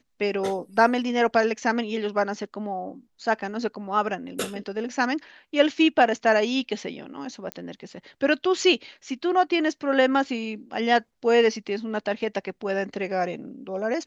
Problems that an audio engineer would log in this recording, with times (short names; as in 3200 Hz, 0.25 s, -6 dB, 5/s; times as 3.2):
7.52 pop -16 dBFS